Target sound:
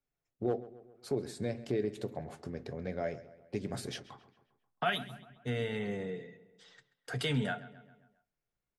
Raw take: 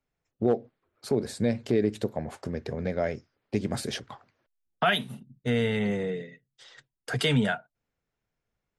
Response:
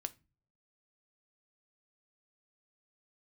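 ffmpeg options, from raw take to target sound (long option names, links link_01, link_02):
-filter_complex "[0:a]asplit=2[link_01][link_02];[link_02]adelay=134,lowpass=frequency=3800:poles=1,volume=-16.5dB,asplit=2[link_03][link_04];[link_04]adelay=134,lowpass=frequency=3800:poles=1,volume=0.53,asplit=2[link_05][link_06];[link_06]adelay=134,lowpass=frequency=3800:poles=1,volume=0.53,asplit=2[link_07][link_08];[link_08]adelay=134,lowpass=frequency=3800:poles=1,volume=0.53,asplit=2[link_09][link_10];[link_10]adelay=134,lowpass=frequency=3800:poles=1,volume=0.53[link_11];[link_01][link_03][link_05][link_07][link_09][link_11]amix=inputs=6:normalize=0[link_12];[1:a]atrim=start_sample=2205,asetrate=88200,aresample=44100[link_13];[link_12][link_13]afir=irnorm=-1:irlink=0"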